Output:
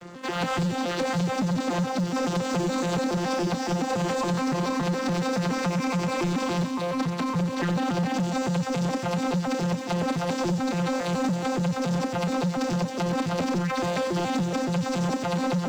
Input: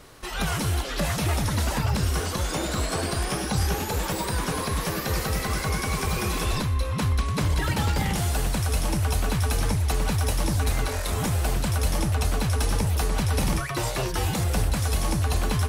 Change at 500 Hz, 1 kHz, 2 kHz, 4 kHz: +4.0, +2.0, -1.5, -3.5 dB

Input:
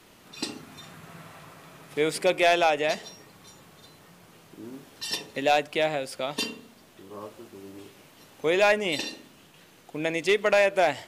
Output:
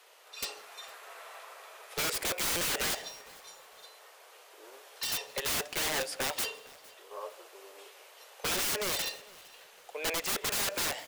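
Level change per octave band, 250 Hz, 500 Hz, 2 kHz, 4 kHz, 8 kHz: -12.0, -15.0, -7.5, -1.5, +6.5 dB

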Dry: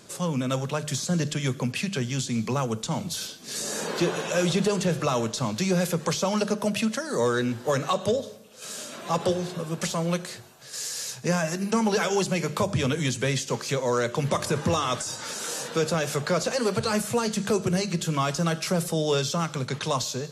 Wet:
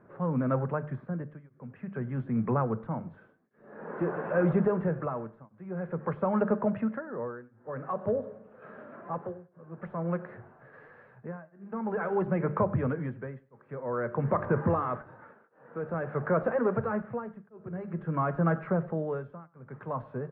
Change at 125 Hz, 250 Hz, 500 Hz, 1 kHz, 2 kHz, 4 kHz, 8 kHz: -4.5 dB, -4.5 dB, -4.5 dB, -4.5 dB, -9.0 dB, under -40 dB, under -40 dB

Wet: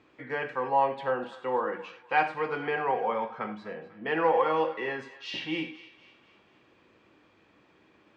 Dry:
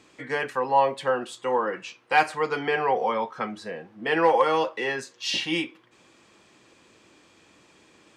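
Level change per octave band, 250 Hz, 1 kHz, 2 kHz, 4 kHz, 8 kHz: -4.0 dB, -4.0 dB, -5.0 dB, -9.5 dB, under -20 dB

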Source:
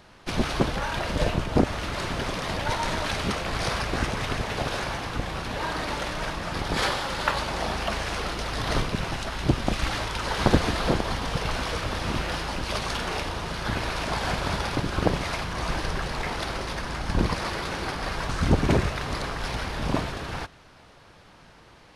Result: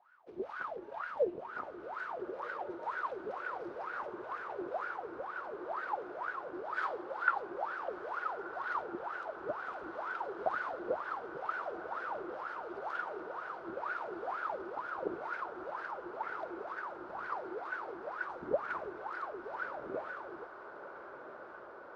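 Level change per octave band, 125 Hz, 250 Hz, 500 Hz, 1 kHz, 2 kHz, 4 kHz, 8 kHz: -35.5 dB, -18.5 dB, -8.5 dB, -8.0 dB, -9.5 dB, -30.5 dB, under -35 dB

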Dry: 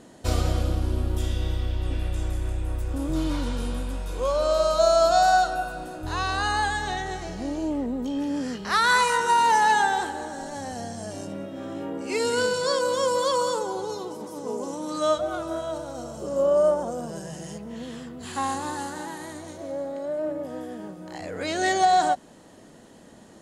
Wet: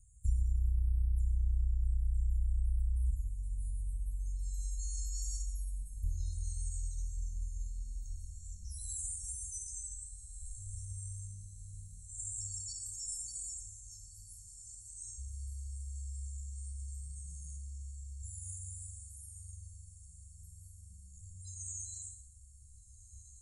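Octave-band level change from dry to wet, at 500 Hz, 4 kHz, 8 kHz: under -40 dB, -26.0 dB, -4.5 dB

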